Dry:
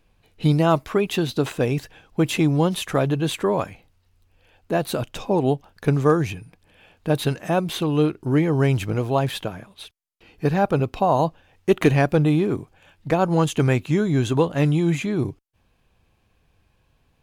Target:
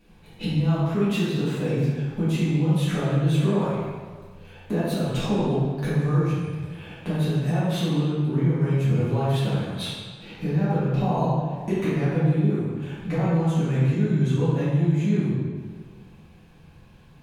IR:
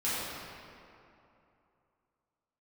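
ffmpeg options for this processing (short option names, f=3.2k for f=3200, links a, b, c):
-filter_complex "[0:a]equalizer=f=160:w=1.6:g=12,acompressor=threshold=-31dB:ratio=6[a];[1:a]atrim=start_sample=2205,asetrate=74970,aresample=44100[b];[a][b]afir=irnorm=-1:irlink=0,volume=5.5dB"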